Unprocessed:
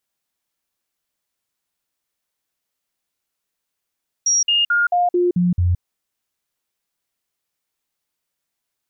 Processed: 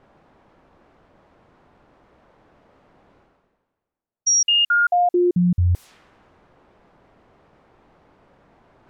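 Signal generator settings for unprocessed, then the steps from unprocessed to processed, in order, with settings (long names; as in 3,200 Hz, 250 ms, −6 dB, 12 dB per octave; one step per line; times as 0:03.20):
stepped sweep 5,670 Hz down, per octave 1, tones 7, 0.17 s, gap 0.05 s −13.5 dBFS
low-pass that shuts in the quiet parts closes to 860 Hz, open at −18.5 dBFS
reversed playback
upward compression, threshold −27 dBFS
reversed playback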